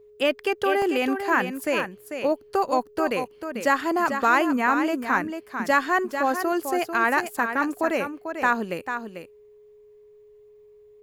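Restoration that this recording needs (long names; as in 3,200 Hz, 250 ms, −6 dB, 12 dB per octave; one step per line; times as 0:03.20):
notch filter 420 Hz, Q 30
repair the gap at 0:00.82/0:01.80, 1.3 ms
echo removal 444 ms −8 dB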